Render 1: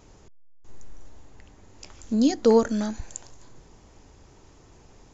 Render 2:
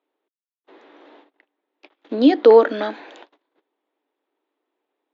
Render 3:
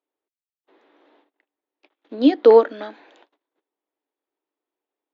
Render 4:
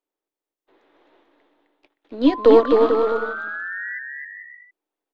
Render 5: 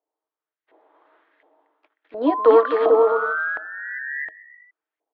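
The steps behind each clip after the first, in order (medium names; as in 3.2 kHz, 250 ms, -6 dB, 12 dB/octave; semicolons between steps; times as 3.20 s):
gate -41 dBFS, range -32 dB; Chebyshev band-pass 290–3700 Hz, order 4; in parallel at +1 dB: peak limiter -17.5 dBFS, peak gain reduction 7.5 dB; on the sum: trim +5 dB
upward expansion 1.5:1, over -26 dBFS
partial rectifier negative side -3 dB; painted sound rise, 2.26–3.99 s, 980–2000 Hz -32 dBFS; on a send: bouncing-ball echo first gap 260 ms, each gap 0.7×, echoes 5
LFO band-pass saw up 1.4 Hz 690–2000 Hz; small resonant body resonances 320/450/630/3200 Hz, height 9 dB, ringing for 90 ms; trim +6.5 dB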